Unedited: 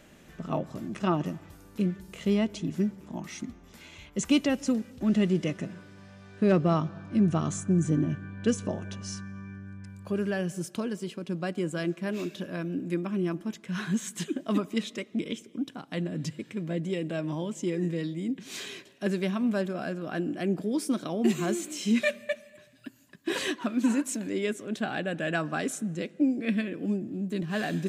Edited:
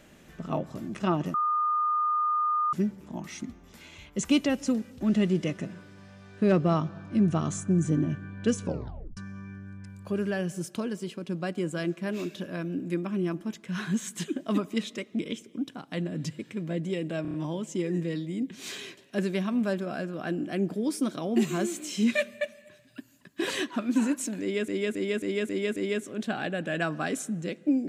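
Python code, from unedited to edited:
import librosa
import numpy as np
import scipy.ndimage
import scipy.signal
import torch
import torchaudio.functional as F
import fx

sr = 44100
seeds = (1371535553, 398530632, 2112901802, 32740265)

y = fx.edit(x, sr, fx.bleep(start_s=1.34, length_s=1.39, hz=1220.0, db=-23.0),
    fx.tape_stop(start_s=8.64, length_s=0.53),
    fx.stutter(start_s=17.22, slice_s=0.03, count=5),
    fx.repeat(start_s=24.29, length_s=0.27, count=6), tone=tone)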